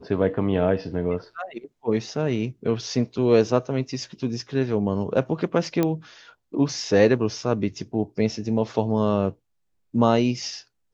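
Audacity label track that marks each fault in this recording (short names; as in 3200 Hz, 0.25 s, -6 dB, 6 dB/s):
5.830000	5.830000	pop -10 dBFS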